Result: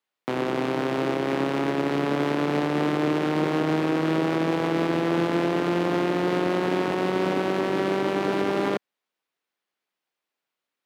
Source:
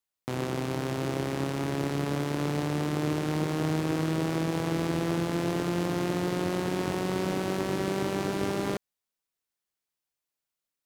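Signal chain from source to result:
three-way crossover with the lows and the highs turned down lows −18 dB, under 190 Hz, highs −14 dB, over 3,900 Hz
brickwall limiter −23 dBFS, peak gain reduction 4.5 dB
level +8.5 dB

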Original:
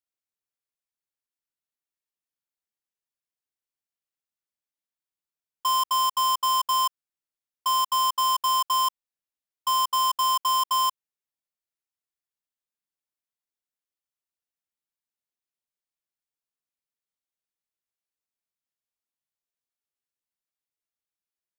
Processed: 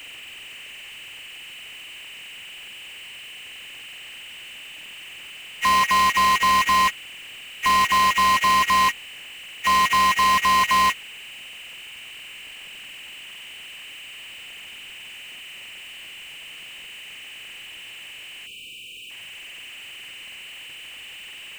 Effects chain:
hearing-aid frequency compression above 1,600 Hz 4 to 1
power curve on the samples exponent 0.35
time-frequency box erased 0:18.47–0:19.10, 530–2,300 Hz

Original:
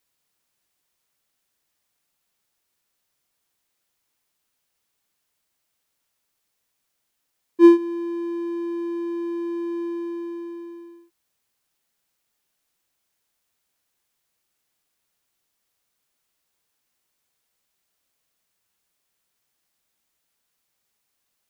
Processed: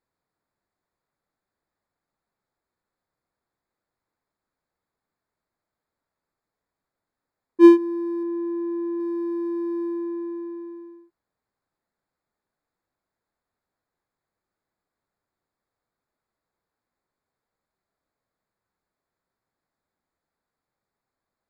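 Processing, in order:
adaptive Wiener filter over 15 samples
0:08.23–0:09.00: high-frequency loss of the air 190 metres
level +1 dB

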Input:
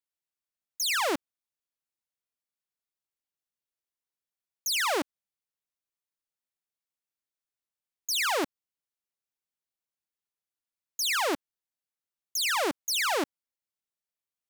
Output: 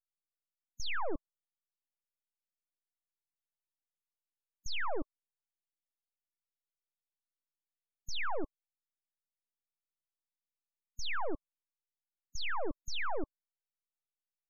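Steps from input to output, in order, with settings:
low-shelf EQ 80 Hz −9.5 dB
full-wave rectification
spectral peaks only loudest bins 32
level −3.5 dB

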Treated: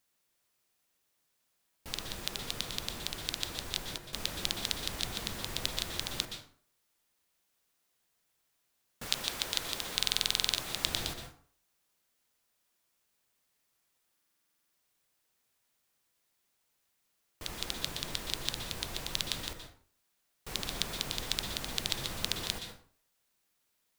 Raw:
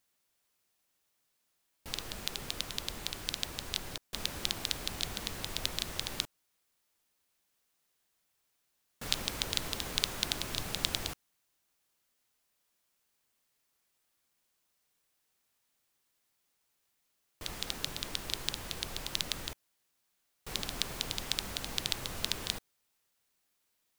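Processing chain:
0:09.05–0:10.85: low-shelf EQ 280 Hz −10 dB
dense smooth reverb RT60 0.5 s, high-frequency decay 0.65×, pre-delay 110 ms, DRR 6 dB
buffer that repeats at 0:09.94/0:14.13, samples 2,048, times 12

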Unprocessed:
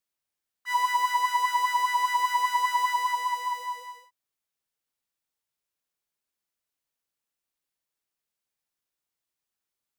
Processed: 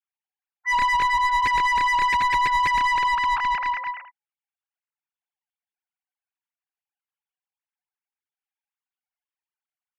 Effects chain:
three sine waves on the formant tracks
mid-hump overdrive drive 20 dB, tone 3,000 Hz, clips at −14.5 dBFS

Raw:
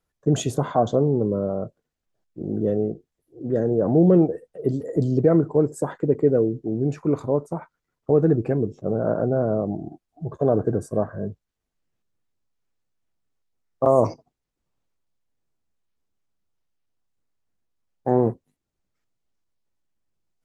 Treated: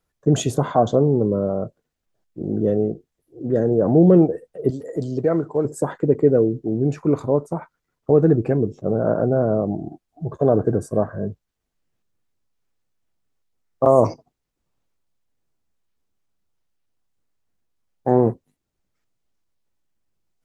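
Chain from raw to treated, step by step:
0:04.70–0:05.65: low-shelf EQ 450 Hz −9.5 dB
level +3 dB

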